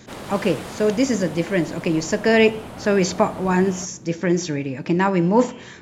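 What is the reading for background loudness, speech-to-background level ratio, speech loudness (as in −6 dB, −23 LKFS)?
−36.5 LKFS, 15.5 dB, −21.0 LKFS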